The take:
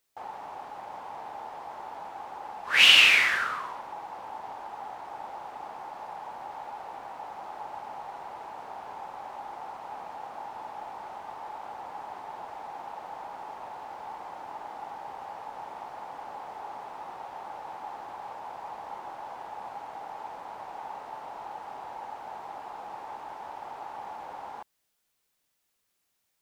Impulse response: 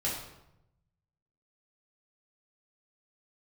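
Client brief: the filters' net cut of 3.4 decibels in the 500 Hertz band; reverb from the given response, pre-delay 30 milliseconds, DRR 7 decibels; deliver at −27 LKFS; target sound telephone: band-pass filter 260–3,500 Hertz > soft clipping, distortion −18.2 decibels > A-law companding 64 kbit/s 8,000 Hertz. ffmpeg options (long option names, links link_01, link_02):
-filter_complex "[0:a]equalizer=frequency=500:width_type=o:gain=-4.5,asplit=2[link_01][link_02];[1:a]atrim=start_sample=2205,adelay=30[link_03];[link_02][link_03]afir=irnorm=-1:irlink=0,volume=-13dB[link_04];[link_01][link_04]amix=inputs=2:normalize=0,highpass=260,lowpass=3500,asoftclip=threshold=-11dB,volume=5.5dB" -ar 8000 -c:a pcm_alaw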